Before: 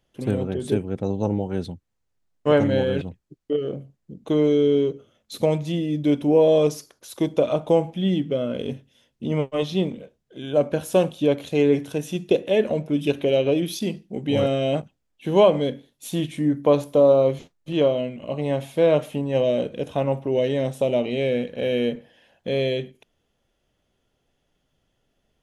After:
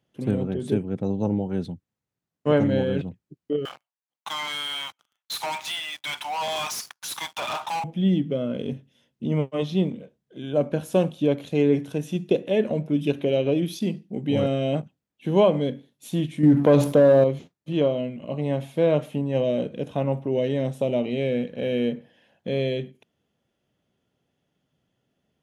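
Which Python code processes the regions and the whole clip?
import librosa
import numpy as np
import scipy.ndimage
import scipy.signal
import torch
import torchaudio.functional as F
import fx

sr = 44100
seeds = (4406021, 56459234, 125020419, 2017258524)

y = fx.chain(x, sr, fx.ellip_highpass(hz=840.0, order=4, stop_db=50),
    fx.leveller(passes=5), at=(3.65, 7.84))
y = fx.chain(y, sr, fx.leveller(passes=1),
    fx.env_flatten(amount_pct=50), at=(16.43, 17.24))
y = scipy.signal.sosfilt(scipy.signal.butter(2, 150.0, 'highpass', fs=sr, output='sos'), y)
y = fx.bass_treble(y, sr, bass_db=9, treble_db=-3)
y = y * librosa.db_to_amplitude(-3.5)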